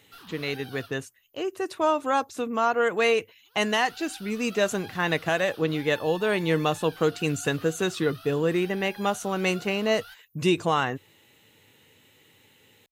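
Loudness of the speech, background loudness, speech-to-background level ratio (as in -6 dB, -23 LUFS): -26.0 LUFS, -46.0 LUFS, 20.0 dB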